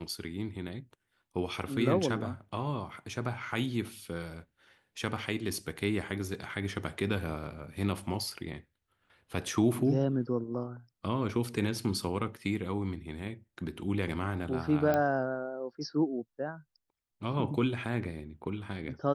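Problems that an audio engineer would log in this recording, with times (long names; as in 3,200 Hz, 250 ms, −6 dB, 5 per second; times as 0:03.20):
0:14.94: click −17 dBFS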